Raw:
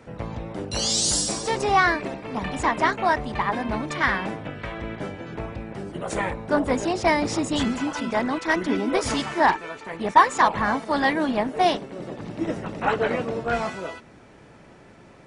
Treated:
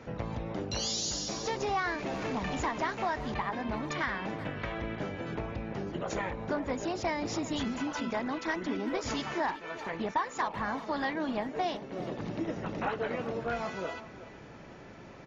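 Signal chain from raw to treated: 1.61–3.34 s: jump at every zero crossing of -31.5 dBFS; compression 3:1, threshold -33 dBFS, peak gain reduction 17 dB; brick-wall FIR low-pass 7.2 kHz; speakerphone echo 380 ms, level -14 dB

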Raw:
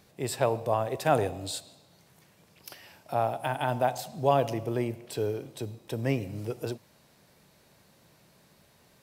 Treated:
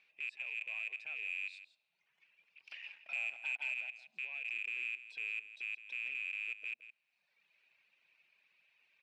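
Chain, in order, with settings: rattle on loud lows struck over -39 dBFS, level -15 dBFS; reverb removal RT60 0.94 s; compression 4:1, threshold -36 dBFS, peak gain reduction 15.5 dB; 2.71–3.74 s: waveshaping leveller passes 3; peak limiter -29 dBFS, peak gain reduction 11 dB; band-pass filter 2.5 kHz, Q 11; saturation -37 dBFS, distortion -22 dB; distance through air 80 m; delay 166 ms -13.5 dB; trim +9.5 dB

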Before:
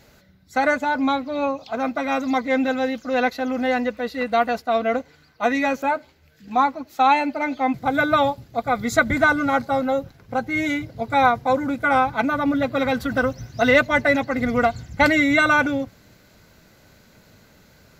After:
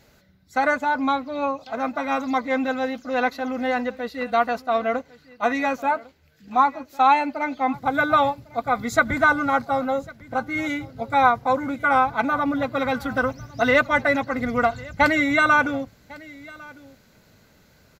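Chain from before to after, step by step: delay 1102 ms -20.5 dB; dynamic bell 1.1 kHz, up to +6 dB, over -32 dBFS, Q 1.5; trim -3.5 dB

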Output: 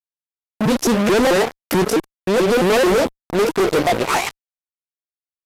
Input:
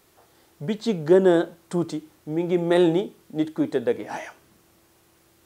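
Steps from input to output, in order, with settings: sawtooth pitch modulation +7.5 st, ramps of 218 ms; fuzz box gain 38 dB, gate -39 dBFS; resampled via 32 kHz

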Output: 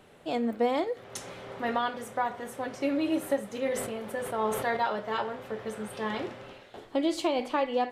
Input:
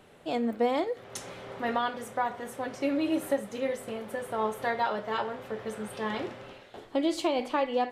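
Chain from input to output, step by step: 3.51–4.77 s: decay stretcher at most 45 dB/s

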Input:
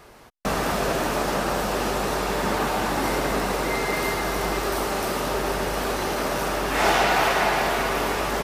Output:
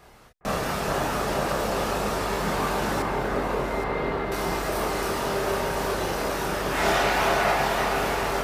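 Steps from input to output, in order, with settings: chorus voices 4, 0.25 Hz, delay 29 ms, depth 1.2 ms; 3.02–4.32 s: distance through air 360 m; echo whose repeats swap between lows and highs 409 ms, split 1.9 kHz, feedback 54%, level -4 dB

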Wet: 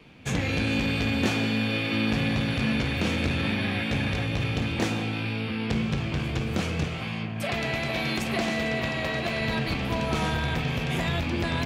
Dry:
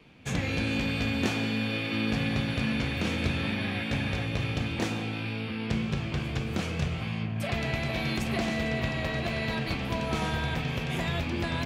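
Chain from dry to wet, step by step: 6.84–9.41 s: bass shelf 130 Hz -10.5 dB; transformer saturation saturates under 270 Hz; trim +4 dB

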